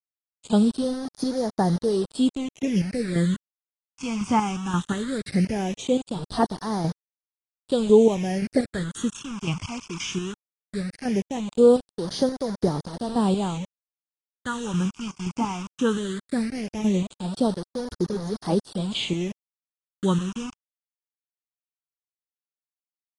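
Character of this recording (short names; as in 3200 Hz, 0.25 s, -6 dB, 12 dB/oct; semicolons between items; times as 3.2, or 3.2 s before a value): chopped level 1.9 Hz, depth 60%, duty 35%; a quantiser's noise floor 6-bit, dither none; phasing stages 8, 0.18 Hz, lowest notch 530–2600 Hz; AAC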